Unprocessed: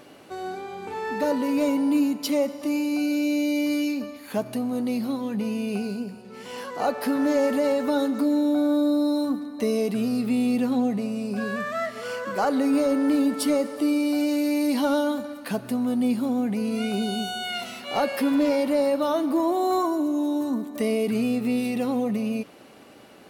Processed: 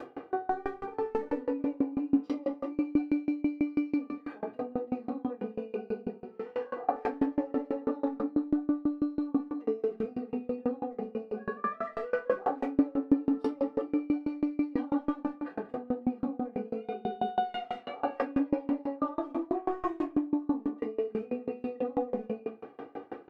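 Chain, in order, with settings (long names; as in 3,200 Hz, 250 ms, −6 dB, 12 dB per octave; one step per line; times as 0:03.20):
0:19.53–0:20.16: variable-slope delta modulation 16 kbit/s
low-pass filter 1,100 Hz 12 dB per octave
upward compression, threshold −36 dBFS
brickwall limiter −25.5 dBFS, peak gain reduction 11 dB
Bessel high-pass filter 210 Hz, order 2
comb filter 2.5 ms, depth 68%
far-end echo of a speakerphone 180 ms, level −9 dB
rectangular room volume 48 cubic metres, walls mixed, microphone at 2.6 metres
tremolo with a ramp in dB decaying 6.1 Hz, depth 28 dB
level −5 dB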